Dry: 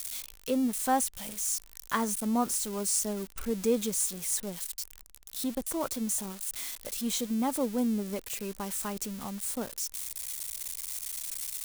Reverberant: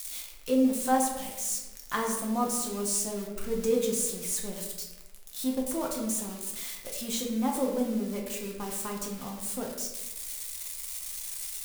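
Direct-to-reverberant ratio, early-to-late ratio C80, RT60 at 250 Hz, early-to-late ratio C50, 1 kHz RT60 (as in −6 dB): −1.0 dB, 6.5 dB, 1.2 s, 4.5 dB, 0.95 s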